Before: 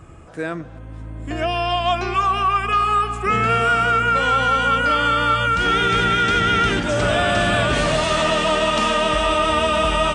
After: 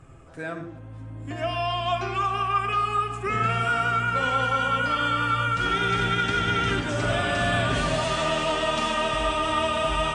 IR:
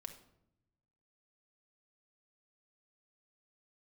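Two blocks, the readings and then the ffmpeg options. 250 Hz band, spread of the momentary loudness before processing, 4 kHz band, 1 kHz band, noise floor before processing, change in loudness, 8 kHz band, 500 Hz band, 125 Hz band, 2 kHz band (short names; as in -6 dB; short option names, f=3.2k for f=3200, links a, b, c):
-6.0 dB, 10 LU, -6.5 dB, -6.5 dB, -36 dBFS, -6.5 dB, -6.5 dB, -7.0 dB, -3.5 dB, -6.0 dB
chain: -filter_complex "[1:a]atrim=start_sample=2205,afade=t=out:st=0.14:d=0.01,atrim=end_sample=6615,asetrate=26019,aresample=44100[a];[0:a][a]afir=irnorm=-1:irlink=0,volume=-4.5dB"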